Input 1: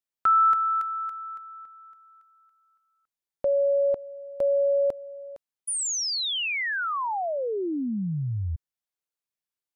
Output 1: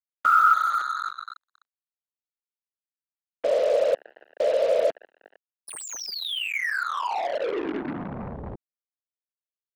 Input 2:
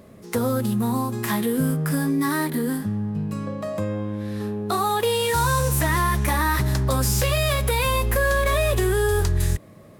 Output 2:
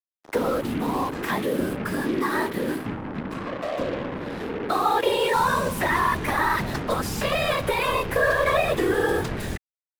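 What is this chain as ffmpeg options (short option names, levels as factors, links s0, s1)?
-filter_complex "[0:a]afftfilt=real='hypot(re,im)*cos(2*PI*random(0))':imag='hypot(re,im)*sin(2*PI*random(1))':win_size=512:overlap=0.75,acrusher=bits=5:mix=0:aa=0.5,acrossover=split=260 3800:gain=0.251 1 0.251[s0][s1][s2];[s0][s1][s2]amix=inputs=3:normalize=0,volume=2.24"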